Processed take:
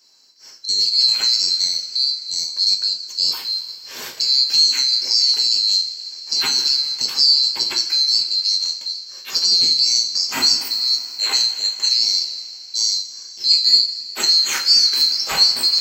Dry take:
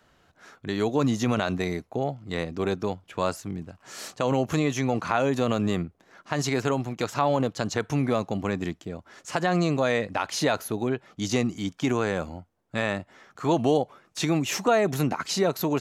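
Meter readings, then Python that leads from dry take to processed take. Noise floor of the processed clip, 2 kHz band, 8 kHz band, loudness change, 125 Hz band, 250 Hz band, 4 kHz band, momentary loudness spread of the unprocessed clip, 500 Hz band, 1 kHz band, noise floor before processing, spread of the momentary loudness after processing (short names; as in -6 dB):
-38 dBFS, 0.0 dB, +14.0 dB, +11.5 dB, under -20 dB, under -15 dB, +25.0 dB, 11 LU, under -15 dB, -7.5 dB, -66 dBFS, 11 LU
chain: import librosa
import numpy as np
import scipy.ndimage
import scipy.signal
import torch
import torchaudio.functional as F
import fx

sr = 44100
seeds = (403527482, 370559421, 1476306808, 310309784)

y = fx.band_swap(x, sr, width_hz=4000)
y = fx.highpass(y, sr, hz=240.0, slope=6)
y = fx.rev_double_slope(y, sr, seeds[0], early_s=0.35, late_s=3.7, knee_db=-18, drr_db=0.0)
y = y * 10.0 ** (5.0 / 20.0)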